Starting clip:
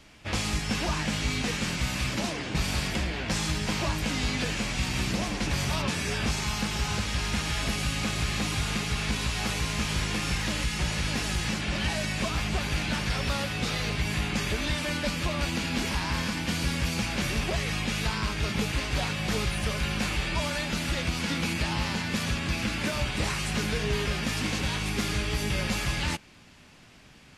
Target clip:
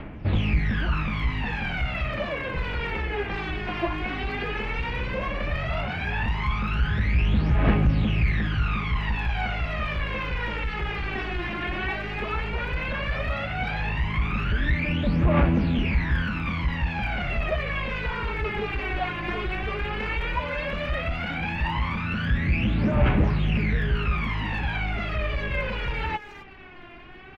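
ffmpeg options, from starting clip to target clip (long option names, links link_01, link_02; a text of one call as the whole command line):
ffmpeg -i in.wav -filter_complex "[0:a]asoftclip=type=tanh:threshold=-28dB,lowpass=frequency=2600:width=0.5412,lowpass=frequency=2600:width=1.3066,asplit=2[link_01][link_02];[link_02]adelay=260,highpass=300,lowpass=3400,asoftclip=type=hard:threshold=-35.5dB,volume=-16dB[link_03];[link_01][link_03]amix=inputs=2:normalize=0,asplit=2[link_04][link_05];[link_05]acompressor=threshold=-41dB:ratio=6,volume=1.5dB[link_06];[link_04][link_06]amix=inputs=2:normalize=0,aphaser=in_gain=1:out_gain=1:delay=2.9:decay=0.77:speed=0.13:type=triangular" out.wav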